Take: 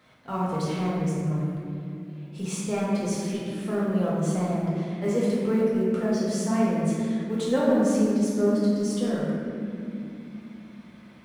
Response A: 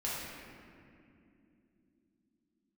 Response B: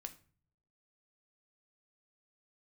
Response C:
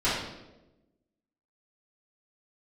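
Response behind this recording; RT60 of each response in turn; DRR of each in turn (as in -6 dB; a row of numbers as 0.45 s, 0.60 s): A; no single decay rate, 0.45 s, 1.0 s; -7.5 dB, 6.5 dB, -13.0 dB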